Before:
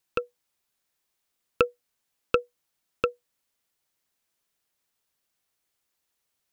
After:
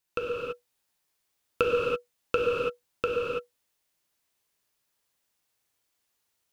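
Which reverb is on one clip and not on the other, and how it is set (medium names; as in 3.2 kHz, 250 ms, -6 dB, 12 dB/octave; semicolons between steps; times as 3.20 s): gated-style reverb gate 360 ms flat, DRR -4.5 dB; trim -4 dB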